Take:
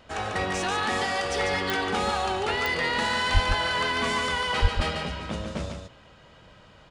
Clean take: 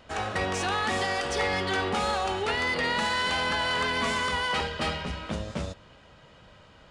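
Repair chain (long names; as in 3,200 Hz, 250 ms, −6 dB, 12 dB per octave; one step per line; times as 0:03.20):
click removal
high-pass at the plosives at 0:03.33/0:04.61
echo removal 145 ms −5.5 dB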